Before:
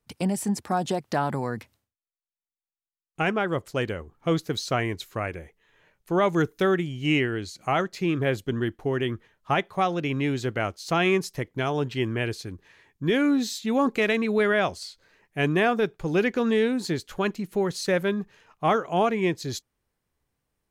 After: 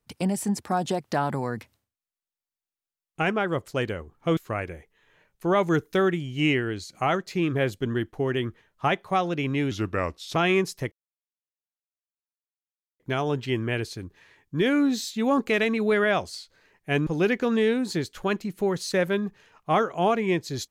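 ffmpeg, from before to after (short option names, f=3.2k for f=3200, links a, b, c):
-filter_complex "[0:a]asplit=6[a][b][c][d][e][f];[a]atrim=end=4.372[g];[b]atrim=start=5.028:end=10.374[h];[c]atrim=start=10.37:end=10.92,asetpts=PTS-STARTPTS,asetrate=37485,aresample=44100,atrim=end_sample=28535,asetpts=PTS-STARTPTS[i];[d]atrim=start=10.916:end=11.48,asetpts=PTS-STARTPTS,afade=t=out:st=0.56:d=0.004:c=hsin,apad=pad_dur=2.08[j];[e]atrim=start=11.48:end=15.552,asetpts=PTS-STARTPTS,afade=t=in:d=0.004:c=hsin[k];[f]atrim=start=16.008[l];[g][h]acrossfade=d=0.004:c1=hsin:c2=hsin[m];[m][i]acrossfade=d=0.004:c1=hsin:c2=hsin[n];[j][k]concat=n=2:v=0:a=1[o];[n][o]acrossfade=d=0.004:c1=hsin:c2=hsin[p];[p][l]acrossfade=d=0.004:c1=hsin:c2=hsin"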